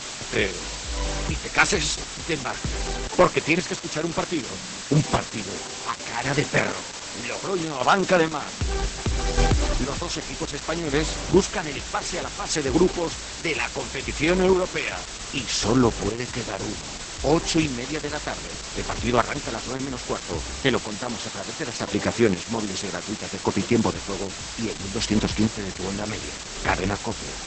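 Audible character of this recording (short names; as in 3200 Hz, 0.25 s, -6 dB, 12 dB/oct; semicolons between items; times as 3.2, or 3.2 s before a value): chopped level 0.64 Hz, depth 60%, duty 30%; a quantiser's noise floor 6-bit, dither triangular; Opus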